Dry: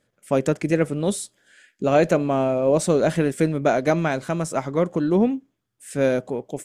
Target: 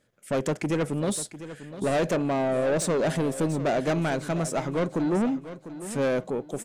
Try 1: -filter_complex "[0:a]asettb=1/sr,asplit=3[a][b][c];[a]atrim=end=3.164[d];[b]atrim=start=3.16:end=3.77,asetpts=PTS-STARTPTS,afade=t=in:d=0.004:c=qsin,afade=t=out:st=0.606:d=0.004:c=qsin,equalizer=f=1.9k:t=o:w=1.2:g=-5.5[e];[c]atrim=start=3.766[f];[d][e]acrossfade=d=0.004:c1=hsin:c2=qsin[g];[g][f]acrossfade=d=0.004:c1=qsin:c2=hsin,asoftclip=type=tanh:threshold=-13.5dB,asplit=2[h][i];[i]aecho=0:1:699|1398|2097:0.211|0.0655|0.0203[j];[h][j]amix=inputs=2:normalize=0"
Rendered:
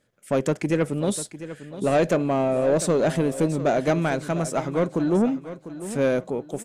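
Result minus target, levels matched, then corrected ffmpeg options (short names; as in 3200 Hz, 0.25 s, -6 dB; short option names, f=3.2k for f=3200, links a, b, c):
soft clip: distortion -7 dB
-filter_complex "[0:a]asettb=1/sr,asplit=3[a][b][c];[a]atrim=end=3.164[d];[b]atrim=start=3.16:end=3.77,asetpts=PTS-STARTPTS,afade=t=in:d=0.004:c=qsin,afade=t=out:st=0.606:d=0.004:c=qsin,equalizer=f=1.9k:t=o:w=1.2:g=-5.5[e];[c]atrim=start=3.766[f];[d][e]acrossfade=d=0.004:c1=hsin:c2=qsin[g];[g][f]acrossfade=d=0.004:c1=qsin:c2=hsin,asoftclip=type=tanh:threshold=-21dB,asplit=2[h][i];[i]aecho=0:1:699|1398|2097:0.211|0.0655|0.0203[j];[h][j]amix=inputs=2:normalize=0"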